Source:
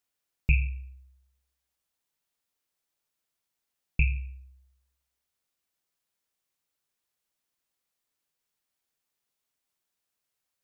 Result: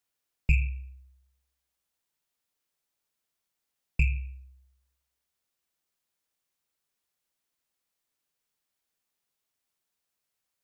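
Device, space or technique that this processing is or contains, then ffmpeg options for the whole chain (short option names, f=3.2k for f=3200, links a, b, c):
one-band saturation: -filter_complex "[0:a]acrossover=split=250|2500[a][b][c];[b]asoftclip=type=tanh:threshold=-32.5dB[d];[a][d][c]amix=inputs=3:normalize=0"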